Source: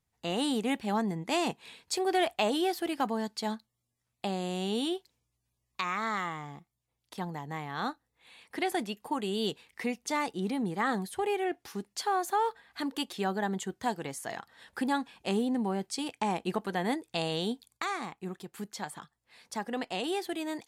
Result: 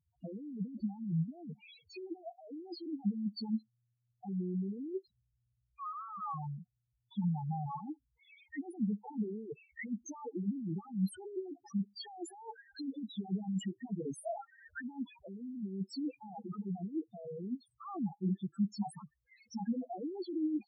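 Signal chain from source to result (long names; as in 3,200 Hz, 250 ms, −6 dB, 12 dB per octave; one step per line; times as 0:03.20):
compressor whose output falls as the input rises −36 dBFS, ratio −0.5
spectral peaks only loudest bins 2
parametric band 200 Hz +5.5 dB 0.43 octaves
level +1.5 dB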